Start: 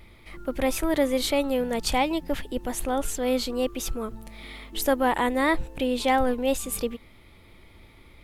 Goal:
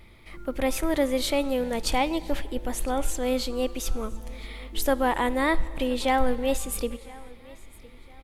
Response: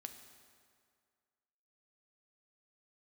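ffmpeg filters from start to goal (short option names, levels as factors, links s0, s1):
-filter_complex "[0:a]aecho=1:1:1010|2020:0.0708|0.0241,asplit=2[s0][s1];[s1]asubboost=boost=8:cutoff=52[s2];[1:a]atrim=start_sample=2205,afade=t=out:st=0.35:d=0.01,atrim=end_sample=15876,asetrate=23814,aresample=44100[s3];[s2][s3]afir=irnorm=-1:irlink=0,volume=0.447[s4];[s0][s4]amix=inputs=2:normalize=0,volume=0.668"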